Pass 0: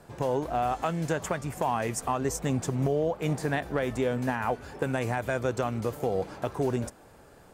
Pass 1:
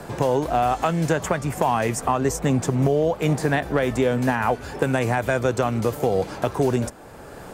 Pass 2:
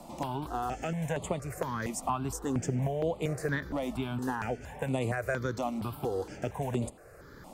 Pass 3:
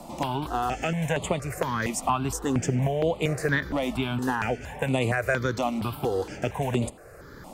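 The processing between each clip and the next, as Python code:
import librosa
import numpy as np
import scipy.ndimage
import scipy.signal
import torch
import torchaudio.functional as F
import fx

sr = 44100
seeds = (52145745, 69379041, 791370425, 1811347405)

y1 = fx.band_squash(x, sr, depth_pct=40)
y1 = F.gain(torch.from_numpy(y1), 7.0).numpy()
y2 = fx.phaser_held(y1, sr, hz=4.3, low_hz=430.0, high_hz=5600.0)
y2 = F.gain(torch.from_numpy(y2), -7.5).numpy()
y3 = fx.dynamic_eq(y2, sr, hz=2700.0, q=0.97, threshold_db=-53.0, ratio=4.0, max_db=6)
y3 = F.gain(torch.from_numpy(y3), 5.5).numpy()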